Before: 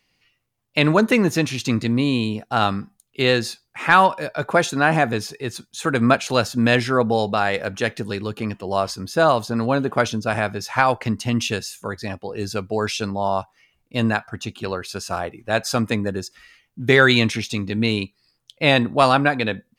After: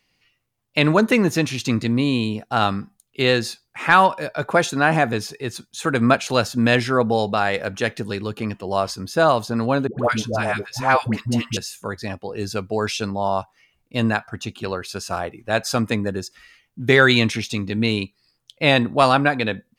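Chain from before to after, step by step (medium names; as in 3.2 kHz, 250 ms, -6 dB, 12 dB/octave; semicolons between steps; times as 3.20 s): 9.87–11.57 s: phase dispersion highs, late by 122 ms, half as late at 630 Hz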